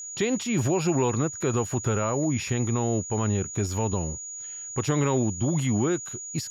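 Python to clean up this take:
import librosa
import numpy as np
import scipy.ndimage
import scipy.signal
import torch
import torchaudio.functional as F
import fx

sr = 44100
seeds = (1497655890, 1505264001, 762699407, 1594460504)

y = fx.notch(x, sr, hz=6800.0, q=30.0)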